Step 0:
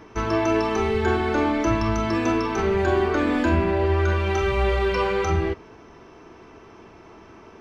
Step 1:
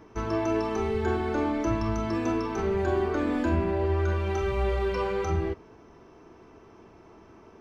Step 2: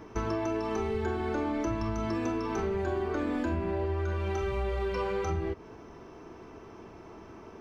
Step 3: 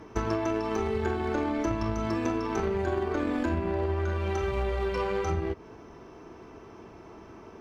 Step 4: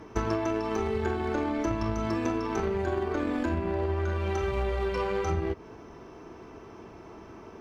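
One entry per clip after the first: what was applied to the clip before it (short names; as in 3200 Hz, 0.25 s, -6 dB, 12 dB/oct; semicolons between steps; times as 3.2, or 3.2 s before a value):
bell 2700 Hz -5.5 dB 2.5 oct; gain -4.5 dB
compressor 6:1, threshold -32 dBFS, peak gain reduction 11 dB; gain +4 dB
added harmonics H 3 -15 dB, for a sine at -18 dBFS; one-sided clip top -26 dBFS; gain +7 dB
vocal rider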